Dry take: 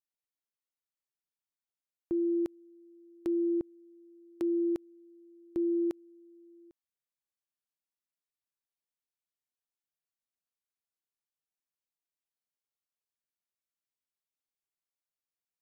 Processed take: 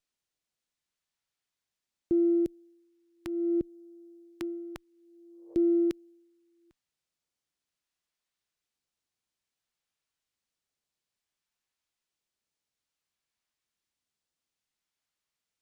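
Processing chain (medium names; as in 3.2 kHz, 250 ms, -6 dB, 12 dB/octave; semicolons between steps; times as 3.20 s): phase shifter stages 2, 0.58 Hz, lowest notch 350–1200 Hz; spectral replace 5.22–5.52 s, 440–1200 Hz both; sliding maximum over 3 samples; trim +7 dB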